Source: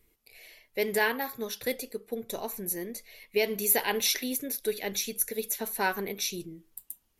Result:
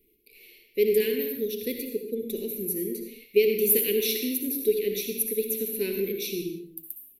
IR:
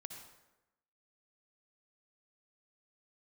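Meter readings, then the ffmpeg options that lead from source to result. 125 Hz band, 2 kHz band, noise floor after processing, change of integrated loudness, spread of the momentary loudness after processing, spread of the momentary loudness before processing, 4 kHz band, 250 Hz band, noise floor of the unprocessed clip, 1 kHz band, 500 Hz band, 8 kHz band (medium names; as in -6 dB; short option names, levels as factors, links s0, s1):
+3.0 dB, -6.0 dB, -60 dBFS, +3.5 dB, 12 LU, 15 LU, -1.5 dB, +5.5 dB, -71 dBFS, under -25 dB, +7.0 dB, -1.5 dB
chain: -filter_complex "[0:a]firequalizer=gain_entry='entry(110,0);entry(210,9);entry(420,14);entry(720,-28);entry(1200,-24);entry(2400,7);entry(7100,-5);entry(13000,11)':delay=0.05:min_phase=1[s0];[1:a]atrim=start_sample=2205,afade=t=out:st=0.38:d=0.01,atrim=end_sample=17199[s1];[s0][s1]afir=irnorm=-1:irlink=0"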